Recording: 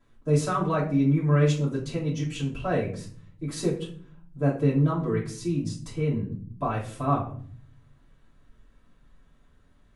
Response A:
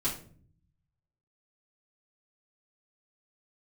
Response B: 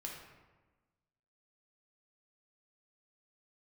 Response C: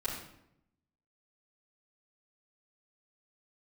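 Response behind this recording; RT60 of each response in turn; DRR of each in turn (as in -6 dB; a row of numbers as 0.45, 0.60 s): A; 0.50, 1.2, 0.80 s; -9.5, -2.0, -10.0 dB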